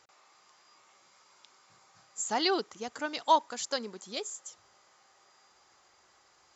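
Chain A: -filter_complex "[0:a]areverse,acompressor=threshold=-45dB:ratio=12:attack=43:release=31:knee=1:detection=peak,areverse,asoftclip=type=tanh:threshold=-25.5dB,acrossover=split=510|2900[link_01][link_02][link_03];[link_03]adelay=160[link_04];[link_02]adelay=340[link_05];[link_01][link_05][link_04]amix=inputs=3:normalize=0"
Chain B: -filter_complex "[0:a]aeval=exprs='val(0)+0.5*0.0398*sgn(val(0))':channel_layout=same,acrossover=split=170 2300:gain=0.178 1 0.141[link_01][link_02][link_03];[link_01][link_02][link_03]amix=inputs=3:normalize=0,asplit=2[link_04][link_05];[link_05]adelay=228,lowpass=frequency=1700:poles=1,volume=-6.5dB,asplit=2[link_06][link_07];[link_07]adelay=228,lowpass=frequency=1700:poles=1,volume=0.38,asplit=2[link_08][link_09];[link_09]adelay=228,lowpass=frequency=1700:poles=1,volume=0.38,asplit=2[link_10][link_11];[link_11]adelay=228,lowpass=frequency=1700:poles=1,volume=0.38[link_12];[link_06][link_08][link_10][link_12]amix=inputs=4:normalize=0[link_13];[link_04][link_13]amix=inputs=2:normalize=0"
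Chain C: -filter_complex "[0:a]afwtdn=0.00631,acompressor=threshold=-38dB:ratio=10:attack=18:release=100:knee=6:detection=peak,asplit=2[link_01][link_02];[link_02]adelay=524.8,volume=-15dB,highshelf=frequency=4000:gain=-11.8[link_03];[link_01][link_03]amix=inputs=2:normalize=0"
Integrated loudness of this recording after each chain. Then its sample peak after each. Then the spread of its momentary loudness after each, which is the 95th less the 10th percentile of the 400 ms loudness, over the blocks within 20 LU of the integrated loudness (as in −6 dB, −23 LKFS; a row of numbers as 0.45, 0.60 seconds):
−43.5, −32.5, −41.0 LKFS; −25.0, −12.5, −23.0 dBFS; 22, 11, 12 LU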